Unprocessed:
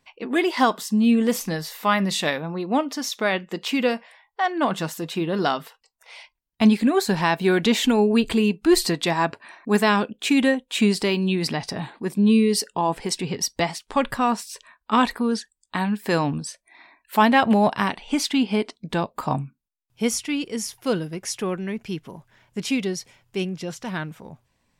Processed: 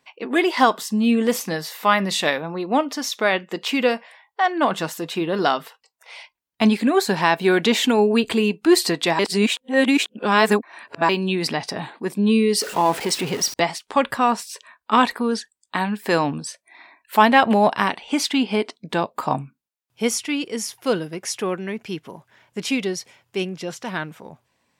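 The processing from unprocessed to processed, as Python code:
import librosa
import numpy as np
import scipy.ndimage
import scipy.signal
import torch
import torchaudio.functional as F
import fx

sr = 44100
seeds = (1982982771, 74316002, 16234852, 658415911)

y = fx.zero_step(x, sr, step_db=-29.5, at=(12.61, 13.54))
y = fx.edit(y, sr, fx.reverse_span(start_s=9.19, length_s=1.9), tone=tone)
y = scipy.signal.sosfilt(scipy.signal.butter(2, 84.0, 'highpass', fs=sr, output='sos'), y)
y = fx.bass_treble(y, sr, bass_db=-7, treble_db=-2)
y = F.gain(torch.from_numpy(y), 3.5).numpy()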